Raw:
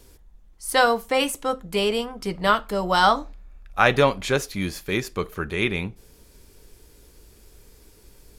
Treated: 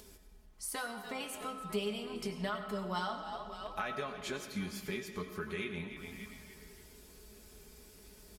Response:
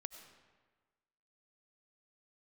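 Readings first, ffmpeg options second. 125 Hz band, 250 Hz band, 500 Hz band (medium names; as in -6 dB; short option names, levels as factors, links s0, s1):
-14.5 dB, -12.5 dB, -17.0 dB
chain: -filter_complex "[0:a]asplit=5[s0][s1][s2][s3][s4];[s1]adelay=289,afreqshift=-79,volume=0.141[s5];[s2]adelay=578,afreqshift=-158,volume=0.061[s6];[s3]adelay=867,afreqshift=-237,volume=0.026[s7];[s4]adelay=1156,afreqshift=-316,volume=0.0112[s8];[s0][s5][s6][s7][s8]amix=inputs=5:normalize=0,acompressor=threshold=0.0178:ratio=5,highpass=46,flanger=delay=9.2:depth=4:regen=53:speed=1.1:shape=triangular,bandreject=f=460:w=12,aecho=1:1:4.7:0.65[s9];[1:a]atrim=start_sample=2205[s10];[s9][s10]afir=irnorm=-1:irlink=0,acompressor=mode=upward:threshold=0.00112:ratio=2.5,volume=1.68"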